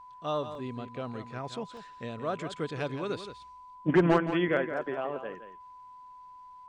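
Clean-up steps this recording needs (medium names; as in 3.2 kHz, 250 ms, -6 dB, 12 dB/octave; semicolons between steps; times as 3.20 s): band-stop 1 kHz, Q 30; interpolate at 0.55/1.77 s, 1.2 ms; inverse comb 170 ms -10.5 dB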